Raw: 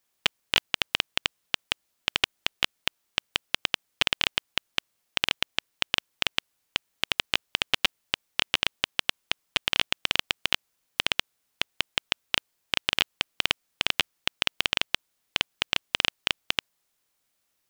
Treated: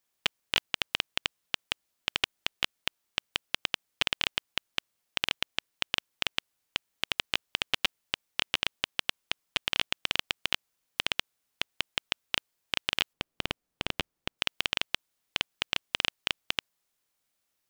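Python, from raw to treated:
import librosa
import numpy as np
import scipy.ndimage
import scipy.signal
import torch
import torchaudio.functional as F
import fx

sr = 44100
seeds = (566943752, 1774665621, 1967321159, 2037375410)

y = fx.tilt_shelf(x, sr, db=7.0, hz=870.0, at=(13.13, 14.39))
y = y * librosa.db_to_amplitude(-4.0)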